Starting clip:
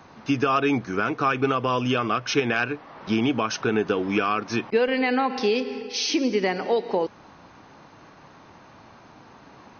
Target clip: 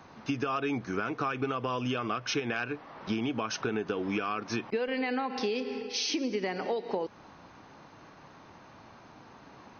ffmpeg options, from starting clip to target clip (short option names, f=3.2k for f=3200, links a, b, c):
-af "acompressor=threshold=-24dB:ratio=6,volume=-3.5dB"